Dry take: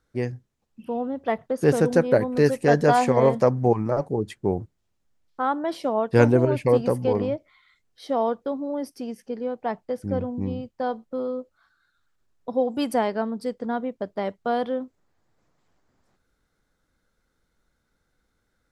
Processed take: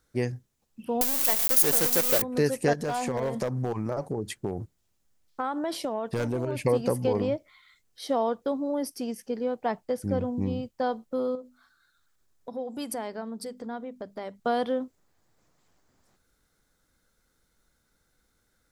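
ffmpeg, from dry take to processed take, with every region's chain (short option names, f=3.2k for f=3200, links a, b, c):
-filter_complex "[0:a]asettb=1/sr,asplit=3[a][b][c];[a]atrim=end=1.014[d];[b]atrim=start=1.01:end=2.22,asetpts=PTS-STARTPTS,afade=t=in:d=0.004:c=qsin,afade=t=out:st=1.206:d=0.004:c=qsin,aeval=exprs='val(0)+0.5*0.0531*sgn(val(0))':c=same,aemphasis=mode=production:type=bsi,acrusher=bits=4:dc=4:mix=0:aa=0.000001[e];[c]atrim=start=2.216[f];[d][e]acrossfade=d=0.004:c1=hsin:c2=qsin[g];[g][f]acrossfade=d=0.004:c1=qsin:c2=hsin,asettb=1/sr,asplit=3[h][i][j];[h]atrim=end=2.734[k];[i]atrim=start=2.73:end=6.62,asetpts=PTS-STARTPTS,afade=t=in:d=0.004:c=qsin,afade=t=out:st=3.886:d=0.004:c=qsin,asoftclip=type=hard:threshold=-12dB,acompressor=threshold=-25dB:ratio=12:attack=3.2:release=140:knee=1:detection=peak[l];[j]atrim=start=6.616[m];[k][l]acrossfade=d=0.004:c1=hsin:c2=qsin[n];[n][m]acrossfade=d=0.004:c1=qsin:c2=hsin,asettb=1/sr,asplit=3[o][p][q];[o]atrim=end=11.354[r];[p]atrim=start=11.35:end=14.4,asetpts=PTS-STARTPTS,afade=t=in:d=0.004:c=qsin,afade=t=out:st=3.046:d=0.004:c=qsin,equalizer=f=2.8k:w=6.4:g=-3,acompressor=threshold=-39dB:ratio=2:attack=3.2:release=140:knee=1:detection=peak,bandreject=f=50:t=h:w=6,bandreject=f=100:t=h:w=6,bandreject=f=150:t=h:w=6,bandreject=f=200:t=h:w=6,bandreject=f=250:t=h:w=6[s];[q]atrim=start=14.396[t];[r][s]acrossfade=d=0.004:c1=hsin:c2=qsin[u];[u][t]acrossfade=d=0.004:c1=qsin:c2=hsin,highshelf=f=5.1k:g=11,acompressor=threshold=-22dB:ratio=2.5"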